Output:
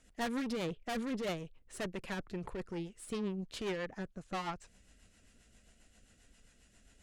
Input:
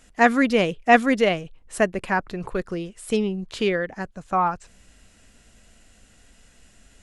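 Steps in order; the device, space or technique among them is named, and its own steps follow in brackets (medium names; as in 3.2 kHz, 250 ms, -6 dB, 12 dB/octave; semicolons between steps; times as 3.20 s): 0.52–1.24 s: treble shelf 7.8 kHz -11 dB; overdriven rotary cabinet (valve stage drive 27 dB, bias 0.6; rotary cabinet horn 7.5 Hz); trim -5 dB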